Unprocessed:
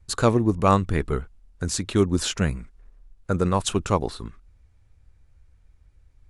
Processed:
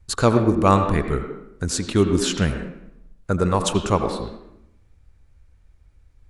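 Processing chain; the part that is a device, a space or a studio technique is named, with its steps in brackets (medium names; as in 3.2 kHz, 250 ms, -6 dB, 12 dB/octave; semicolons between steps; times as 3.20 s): filtered reverb send (on a send: high-pass 190 Hz 24 dB/octave + low-pass 3.4 kHz 12 dB/octave + reverberation RT60 0.80 s, pre-delay 77 ms, DRR 6.5 dB); on the sum: trim +2 dB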